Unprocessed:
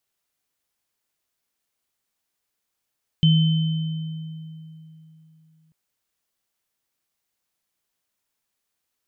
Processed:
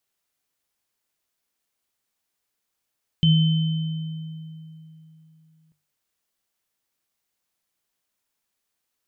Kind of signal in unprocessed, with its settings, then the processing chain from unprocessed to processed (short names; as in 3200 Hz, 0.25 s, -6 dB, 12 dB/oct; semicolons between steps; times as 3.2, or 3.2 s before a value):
sine partials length 2.49 s, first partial 159 Hz, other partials 3070 Hz, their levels -9 dB, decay 3.25 s, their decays 2.00 s, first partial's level -12 dB
notches 50/100/150 Hz